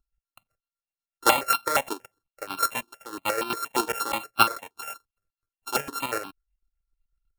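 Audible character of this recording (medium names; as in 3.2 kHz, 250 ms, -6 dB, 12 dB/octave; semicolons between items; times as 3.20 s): a buzz of ramps at a fixed pitch in blocks of 32 samples; chopped level 8 Hz, depth 60%, duty 45%; notches that jump at a steady rate 8.5 Hz 540–1900 Hz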